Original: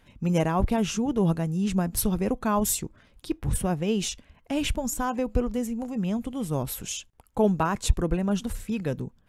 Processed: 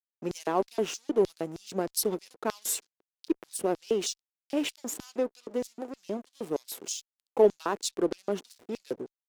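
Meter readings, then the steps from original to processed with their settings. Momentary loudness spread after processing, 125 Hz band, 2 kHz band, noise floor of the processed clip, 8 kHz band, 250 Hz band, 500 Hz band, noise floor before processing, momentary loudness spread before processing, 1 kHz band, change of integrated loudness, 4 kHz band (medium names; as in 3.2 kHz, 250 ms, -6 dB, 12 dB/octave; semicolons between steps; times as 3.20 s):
10 LU, -18.5 dB, -6.0 dB, under -85 dBFS, -3.0 dB, -8.5 dB, +1.0 dB, -60 dBFS, 8 LU, -5.0 dB, -4.0 dB, -2.5 dB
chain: hysteresis with a dead band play -31.5 dBFS; LFO high-pass square 3.2 Hz 380–4700 Hz; Chebyshev shaper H 6 -41 dB, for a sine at -7 dBFS; trim -2.5 dB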